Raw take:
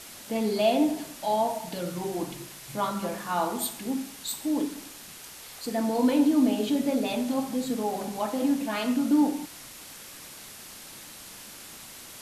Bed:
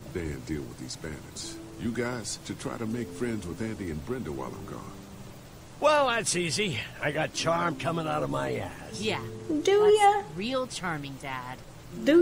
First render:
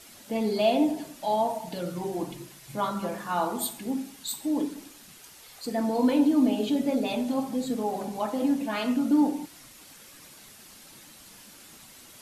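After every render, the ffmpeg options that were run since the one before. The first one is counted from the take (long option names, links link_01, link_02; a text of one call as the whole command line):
ffmpeg -i in.wav -af "afftdn=noise_reduction=7:noise_floor=-45" out.wav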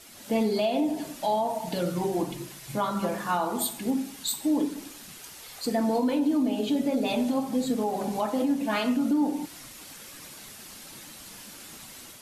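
ffmpeg -i in.wav -af "dynaudnorm=framelen=130:gausssize=3:maxgain=5dB,alimiter=limit=-17.5dB:level=0:latency=1:release=278" out.wav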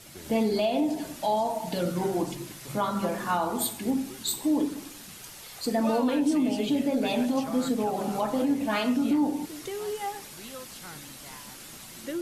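ffmpeg -i in.wav -i bed.wav -filter_complex "[1:a]volume=-13.5dB[link_01];[0:a][link_01]amix=inputs=2:normalize=0" out.wav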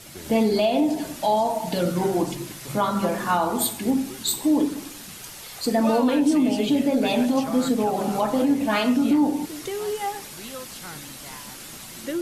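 ffmpeg -i in.wav -af "volume=5dB" out.wav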